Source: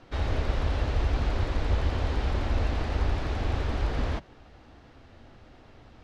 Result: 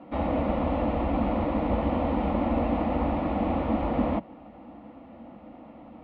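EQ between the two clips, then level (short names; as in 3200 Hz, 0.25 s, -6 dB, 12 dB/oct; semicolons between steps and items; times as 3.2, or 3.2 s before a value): speaker cabinet 100–2300 Hz, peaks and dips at 120 Hz +5 dB, 210 Hz +6 dB, 300 Hz +4 dB, 480 Hz +8 dB, 1500 Hz +9 dB; fixed phaser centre 420 Hz, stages 6; +8.0 dB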